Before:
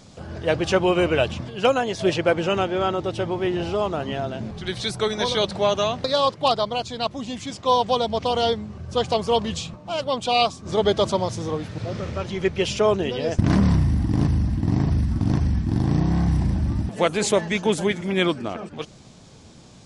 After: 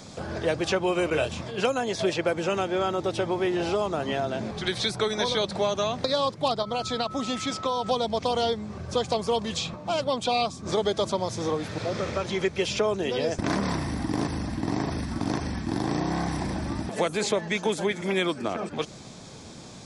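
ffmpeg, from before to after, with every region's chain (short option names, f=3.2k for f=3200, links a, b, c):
-filter_complex "[0:a]asettb=1/sr,asplit=3[a][b][c];[a]atrim=end=1.104[d];[b]atrim=start=1.1:end=1.61,asetpts=PTS-STARTPTS,afade=t=in:d=0.004:c=qsin,afade=t=out:st=0.506:d=0.004:c=qsin,asplit=2[e][f];[f]adelay=26,volume=-5dB[g];[e][g]amix=inputs=2:normalize=0,atrim=end_sample=22491,agate=range=-33dB:threshold=-30dB:ratio=3:release=100:detection=peak[h];[c]atrim=start=1.606[i];[d][h]acrossfade=d=0.004:c1=hsin:c2=qsin[j];[j][i]acrossfade=d=0.004:c1=qsin:c2=hsin,asettb=1/sr,asplit=3[k][l][m];[k]atrim=end=6.624[n];[l]atrim=start=6.62:end=7.91,asetpts=PTS-STARTPTS,afade=t=in:d=0.004:c=qsin,afade=t=out:st=1.286:d=0.004:c=qsin,acompressor=threshold=-25dB:ratio=4:attack=3.2:release=140:knee=1:detection=peak,aeval=exprs='val(0)+0.00891*sin(2*PI*1300*n/s)':c=same[o];[m]atrim=start=7.906[p];[n][o]acrossfade=d=0.004:c1=hsin:c2=qsin[q];[q][p]acrossfade=d=0.004:c1=qsin:c2=hsin,lowshelf=f=120:g=-8.5,bandreject=f=2.9k:w=12,acrossover=split=300|5800[r][s][t];[r]acompressor=threshold=-40dB:ratio=4[u];[s]acompressor=threshold=-31dB:ratio=4[v];[t]acompressor=threshold=-49dB:ratio=4[w];[u][v][w]amix=inputs=3:normalize=0,volume=5.5dB"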